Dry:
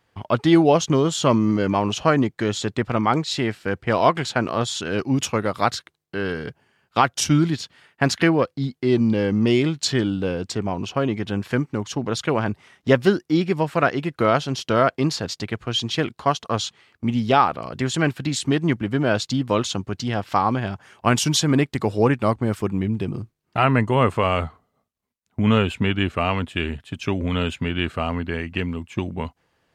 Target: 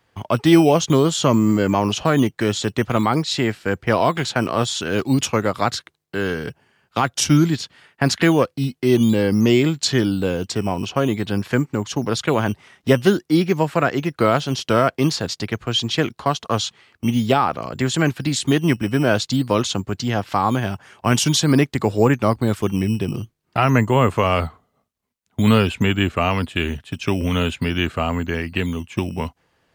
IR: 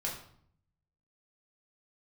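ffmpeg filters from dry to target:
-filter_complex "[0:a]acrossover=split=290[s0][s1];[s0]acrusher=samples=11:mix=1:aa=0.000001:lfo=1:lforange=11:lforate=0.49[s2];[s1]alimiter=limit=0.316:level=0:latency=1:release=89[s3];[s2][s3]amix=inputs=2:normalize=0,volume=1.41"

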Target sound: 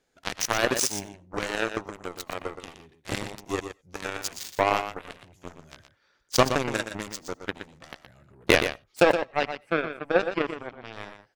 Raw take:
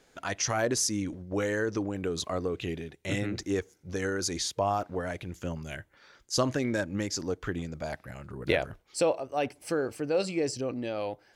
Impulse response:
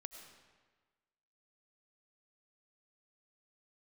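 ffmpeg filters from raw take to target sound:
-filter_complex "[0:a]asettb=1/sr,asplit=3[s0][s1][s2];[s0]atrim=end=9.134[s3];[s1]atrim=start=9.13:end=10.93,asetpts=PTS-STARTPTS,afade=t=in:d=0.004:c=qsin,afade=t=out:st=1.796:d=0.004:c=qsin,highshelf=f=3000:t=q:w=1.5:g=-13.5[s4];[s2]atrim=start=10.926[s5];[s3][s4]acrossfade=d=0.004:c1=hsin:c2=qsin[s6];[s6][s5]acrossfade=d=0.004:c1=qsin:c2=hsin,aeval=exprs='0.282*(cos(1*acos(clip(val(0)/0.282,-1,1)))-cos(1*PI/2))+0.0447*(cos(7*acos(clip(val(0)/0.282,-1,1)))-cos(7*PI/2))':c=same,aecho=1:1:120:0.355,asplit=2[s7][s8];[1:a]atrim=start_sample=2205,atrim=end_sample=4410[s9];[s8][s9]afir=irnorm=-1:irlink=0,volume=0.75[s10];[s7][s10]amix=inputs=2:normalize=0,volume=1.88"

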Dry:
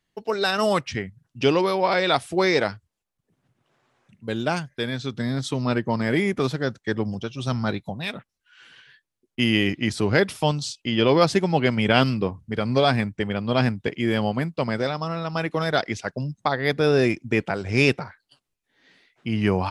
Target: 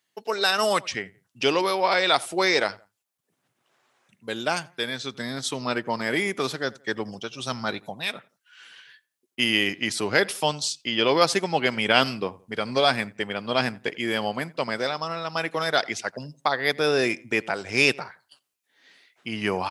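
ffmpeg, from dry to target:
-filter_complex "[0:a]highpass=f=610:p=1,highshelf=f=6800:g=7.5,asplit=2[s0][s1];[s1]adelay=86,lowpass=f=2200:p=1,volume=0.0794,asplit=2[s2][s3];[s3]adelay=86,lowpass=f=2200:p=1,volume=0.34[s4];[s2][s4]amix=inputs=2:normalize=0[s5];[s0][s5]amix=inputs=2:normalize=0,volume=1.19"

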